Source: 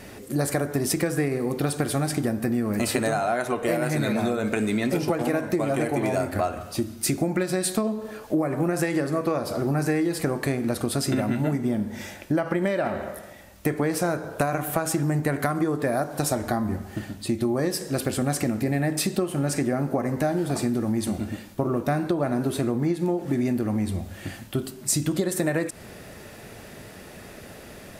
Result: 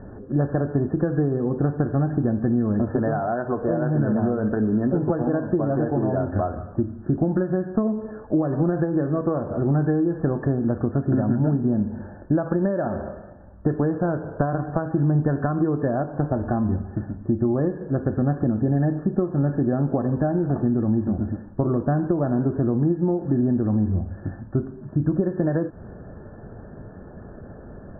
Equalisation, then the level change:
linear-phase brick-wall low-pass 1,800 Hz
high-frequency loss of the air 450 metres
spectral tilt −2 dB per octave
0.0 dB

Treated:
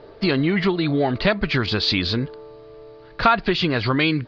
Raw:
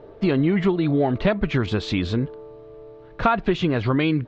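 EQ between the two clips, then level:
low-pass with resonance 4,700 Hz, resonance Q 7.7
parametric band 1,800 Hz +6 dB 1.9 octaves
−1.0 dB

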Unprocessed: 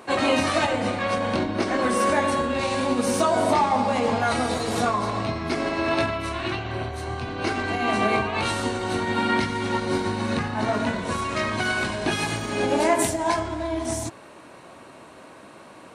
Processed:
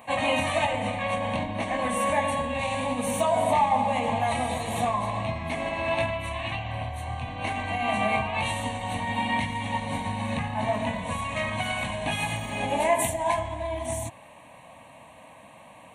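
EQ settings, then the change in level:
high-shelf EQ 10,000 Hz +3.5 dB
phaser with its sweep stopped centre 1,400 Hz, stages 6
0.0 dB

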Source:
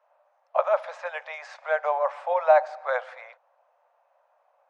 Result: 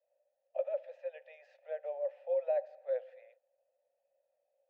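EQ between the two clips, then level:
formant filter e
parametric band 1,600 Hz −12 dB 1.1 octaves
−2.5 dB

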